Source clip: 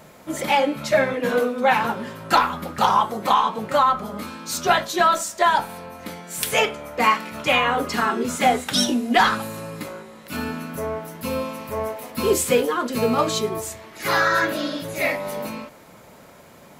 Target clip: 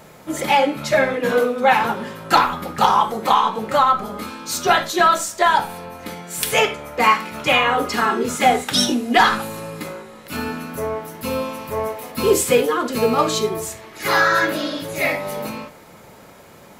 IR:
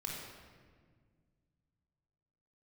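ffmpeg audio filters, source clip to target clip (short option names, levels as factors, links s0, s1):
-filter_complex "[0:a]asplit=2[s0][s1];[1:a]atrim=start_sample=2205,atrim=end_sample=3969[s2];[s1][s2]afir=irnorm=-1:irlink=0,volume=0.596[s3];[s0][s3]amix=inputs=2:normalize=0"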